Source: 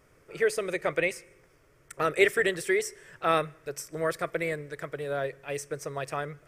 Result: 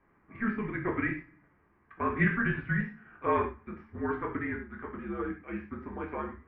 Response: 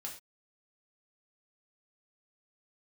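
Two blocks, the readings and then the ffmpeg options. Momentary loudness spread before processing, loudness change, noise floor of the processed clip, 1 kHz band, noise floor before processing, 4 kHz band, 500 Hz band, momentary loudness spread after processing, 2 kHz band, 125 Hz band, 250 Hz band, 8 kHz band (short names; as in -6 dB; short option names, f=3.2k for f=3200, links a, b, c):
13 LU, -3.5 dB, -67 dBFS, -2.0 dB, -62 dBFS, under -15 dB, -8.5 dB, 13 LU, -3.0 dB, +5.5 dB, +4.5 dB, under -40 dB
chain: -filter_complex "[0:a]bandreject=f=88.03:t=h:w=4,bandreject=f=176.06:t=h:w=4,bandreject=f=264.09:t=h:w=4,bandreject=f=352.12:t=h:w=4,bandreject=f=440.15:t=h:w=4,bandreject=f=528.18:t=h:w=4[a];[1:a]atrim=start_sample=2205[b];[a][b]afir=irnorm=-1:irlink=0,highpass=f=170:t=q:w=0.5412,highpass=f=170:t=q:w=1.307,lowpass=f=2.5k:t=q:w=0.5176,lowpass=f=2.5k:t=q:w=0.7071,lowpass=f=2.5k:t=q:w=1.932,afreqshift=-220"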